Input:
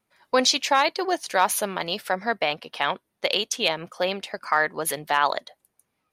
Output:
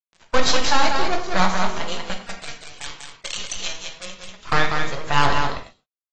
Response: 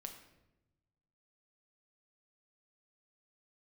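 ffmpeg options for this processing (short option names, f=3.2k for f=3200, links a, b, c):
-filter_complex "[0:a]agate=range=-33dB:threshold=-55dB:ratio=3:detection=peak,highshelf=f=5.8k:g=-3,acompressor=mode=upward:threshold=-38dB:ratio=2.5,flanger=delay=5.8:depth=7.3:regen=-69:speed=0.48:shape=sinusoidal,aeval=exprs='0.316*(cos(1*acos(clip(val(0)/0.316,-1,1)))-cos(1*PI/2))+0.00398*(cos(4*acos(clip(val(0)/0.316,-1,1)))-cos(4*PI/2))+0.0112*(cos(5*acos(clip(val(0)/0.316,-1,1)))-cos(5*PI/2))+0.0794*(cos(6*acos(clip(val(0)/0.316,-1,1)))-cos(6*PI/2))+0.01*(cos(7*acos(clip(val(0)/0.316,-1,1)))-cos(7*PI/2))':c=same,asplit=3[a][b][c];[a]afade=t=out:st=2.1:d=0.02[d];[b]bandpass=f=7.9k:t=q:w=0.52:csg=0,afade=t=in:st=2.1:d=0.02,afade=t=out:st=4.44:d=0.02[e];[c]afade=t=in:st=4.44:d=0.02[f];[d][e][f]amix=inputs=3:normalize=0,acrusher=bits=5:dc=4:mix=0:aa=0.000001,aecho=1:1:193:0.562[g];[1:a]atrim=start_sample=2205,afade=t=out:st=0.18:d=0.01,atrim=end_sample=8379[h];[g][h]afir=irnorm=-1:irlink=0,volume=8dB" -ar 24000 -c:a aac -b:a 24k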